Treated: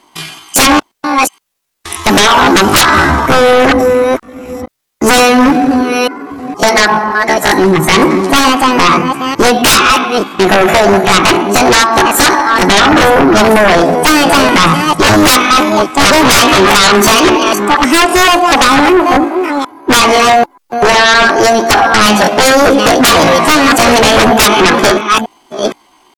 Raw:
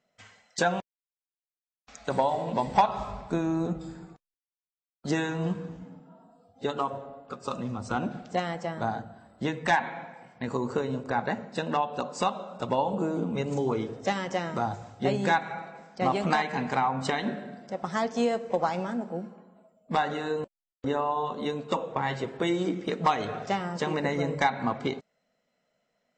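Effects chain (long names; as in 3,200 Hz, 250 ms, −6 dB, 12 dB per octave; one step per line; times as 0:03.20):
delay that plays each chunk backwards 468 ms, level −10 dB
pitch shifter +7.5 semitones
sine wavefolder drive 19 dB, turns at −8.5 dBFS
level +5.5 dB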